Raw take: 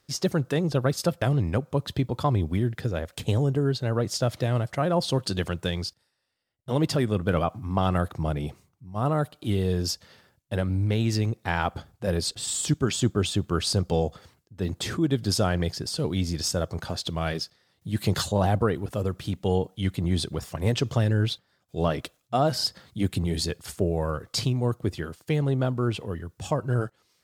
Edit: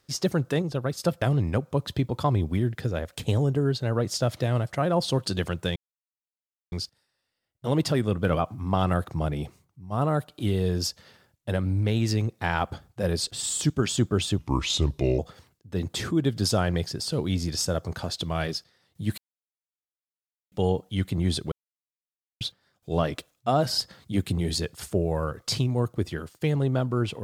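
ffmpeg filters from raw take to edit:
ffmpeg -i in.wav -filter_complex "[0:a]asplit=10[link_01][link_02][link_03][link_04][link_05][link_06][link_07][link_08][link_09][link_10];[link_01]atrim=end=0.622[link_11];[link_02]atrim=start=0.618:end=1.052,asetpts=PTS-STARTPTS,volume=-4.5dB[link_12];[link_03]atrim=start=1.048:end=5.76,asetpts=PTS-STARTPTS,afade=type=out:start_time=4.708:duration=0.004:curve=hsin,apad=pad_dur=0.96[link_13];[link_04]atrim=start=5.76:end=13.424,asetpts=PTS-STARTPTS,afade=type=in:duration=0.004:curve=hsin[link_14];[link_05]atrim=start=13.42:end=14.05,asetpts=PTS-STARTPTS,asetrate=34398,aresample=44100,atrim=end_sample=35619,asetpts=PTS-STARTPTS[link_15];[link_06]atrim=start=14.046:end=18.04,asetpts=PTS-STARTPTS,afade=type=out:start_time=3.99:duration=0.004:curve=hsin[link_16];[link_07]atrim=start=18.04:end=19.38,asetpts=PTS-STARTPTS,volume=0[link_17];[link_08]atrim=start=19.38:end=20.38,asetpts=PTS-STARTPTS,afade=type=in:duration=0.004:curve=hsin,afade=type=out:start_time=0.996:duration=0.004:curve=hsin[link_18];[link_09]atrim=start=20.38:end=21.27,asetpts=PTS-STARTPTS,volume=0[link_19];[link_10]atrim=start=21.27,asetpts=PTS-STARTPTS,afade=type=in:duration=0.004:curve=hsin[link_20];[link_11][link_12]acrossfade=duration=0.004:curve1=hsin:curve2=hsin[link_21];[link_13][link_14]concat=n=2:v=0:a=1[link_22];[link_21][link_22]acrossfade=duration=0.004:curve1=hsin:curve2=hsin[link_23];[link_23][link_15]acrossfade=duration=0.004:curve1=hsin:curve2=hsin[link_24];[link_16][link_17][link_18][link_19][link_20]concat=n=5:v=0:a=1[link_25];[link_24][link_25]acrossfade=duration=0.004:curve1=hsin:curve2=hsin" out.wav

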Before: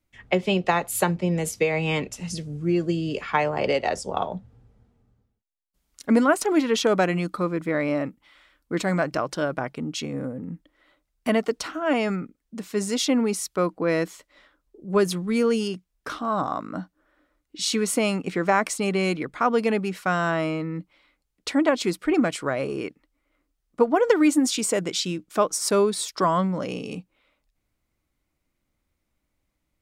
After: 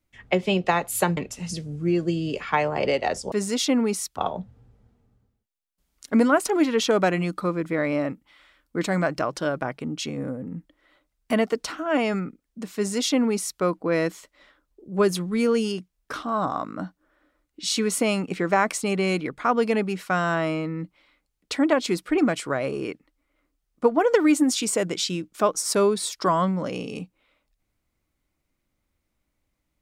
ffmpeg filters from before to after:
ffmpeg -i in.wav -filter_complex "[0:a]asplit=4[link_01][link_02][link_03][link_04];[link_01]atrim=end=1.172[link_05];[link_02]atrim=start=1.978:end=4.132[link_06];[link_03]atrim=start=12.718:end=13.572[link_07];[link_04]atrim=start=4.128[link_08];[link_05][link_06]acrossfade=duration=0.004:curve1=hsin:curve2=hsin[link_09];[link_09][link_07]acrossfade=duration=0.004:curve1=hsin:curve2=hsin[link_10];[link_10][link_08]acrossfade=duration=0.004:curve1=hsin:curve2=hsin" out.wav

